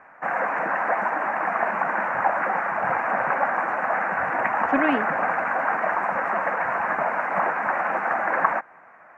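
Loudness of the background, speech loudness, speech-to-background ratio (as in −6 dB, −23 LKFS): −24.0 LKFS, −26.0 LKFS, −2.0 dB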